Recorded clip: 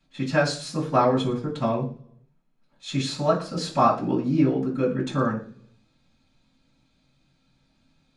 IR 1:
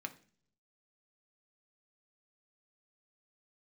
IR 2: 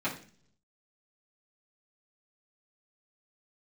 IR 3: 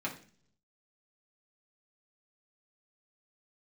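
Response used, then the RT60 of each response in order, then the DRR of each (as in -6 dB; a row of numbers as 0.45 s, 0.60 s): 2; 0.45 s, 0.45 s, 0.45 s; 5.5 dB, -10.0 dB, -4.0 dB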